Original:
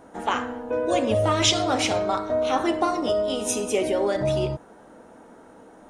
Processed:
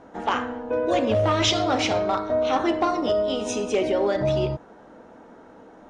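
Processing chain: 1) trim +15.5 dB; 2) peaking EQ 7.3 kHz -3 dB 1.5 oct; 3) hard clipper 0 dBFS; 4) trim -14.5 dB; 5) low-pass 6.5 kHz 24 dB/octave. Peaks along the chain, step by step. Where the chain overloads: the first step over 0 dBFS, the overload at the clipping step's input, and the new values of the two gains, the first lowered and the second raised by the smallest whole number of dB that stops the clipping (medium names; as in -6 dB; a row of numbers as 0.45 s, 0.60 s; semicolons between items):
+8.0 dBFS, +7.0 dBFS, 0.0 dBFS, -14.5 dBFS, -12.5 dBFS; step 1, 7.0 dB; step 1 +8.5 dB, step 4 -7.5 dB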